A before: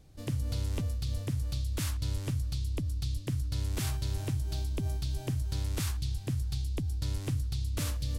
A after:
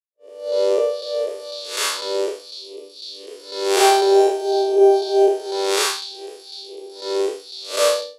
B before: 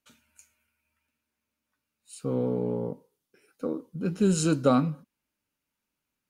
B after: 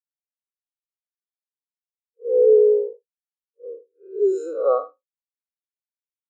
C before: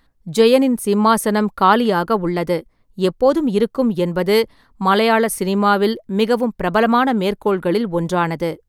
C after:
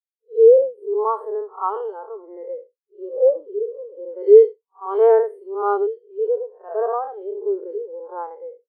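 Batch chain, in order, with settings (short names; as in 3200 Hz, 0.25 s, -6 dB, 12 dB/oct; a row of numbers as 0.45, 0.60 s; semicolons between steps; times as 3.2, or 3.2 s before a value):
time blur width 0.206 s; expander -37 dBFS; elliptic high-pass 400 Hz, stop band 80 dB; AGC gain up to 7.5 dB; spectral expander 2.5:1; match loudness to -19 LUFS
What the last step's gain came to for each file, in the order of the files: +17.0, +6.5, +1.0 dB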